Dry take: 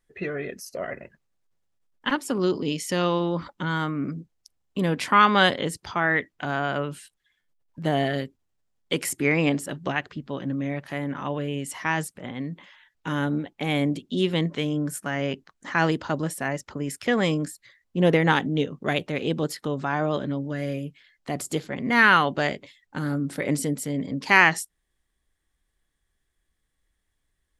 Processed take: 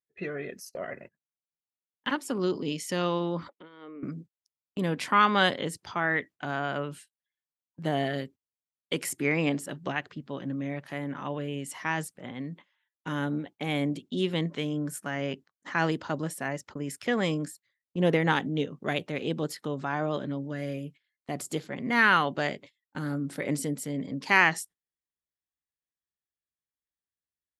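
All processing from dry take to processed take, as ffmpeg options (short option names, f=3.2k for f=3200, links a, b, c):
-filter_complex "[0:a]asettb=1/sr,asplit=3[a][b][c];[a]atrim=end=3.494[d];[b]atrim=start=3.49:end=4.03,asetpts=PTS-STARTPTS,afade=t=in:d=0.004:c=qsin,afade=t=out:st=0.536:d=0.004:c=qsin,acompressor=threshold=-35dB:ratio=5:attack=3.2:release=140:knee=1:detection=peak,highpass=f=250:w=0.5412,highpass=f=250:w=1.3066,equalizer=f=450:t=q:w=4:g=8,equalizer=f=870:t=q:w=4:g=-9,equalizer=f=1.5k:t=q:w=4:g=-9,lowpass=f=3.3k:w=0.5412,lowpass=f=3.3k:w=1.3066[e];[c]atrim=start=4.026[f];[d][e]acrossfade=d=0.004:c1=hsin:c2=qsin[g];[g][f]acrossfade=d=0.004:c1=qsin:c2=hsin,highpass=91,agate=range=-18dB:threshold=-42dB:ratio=16:detection=peak,volume=-4.5dB"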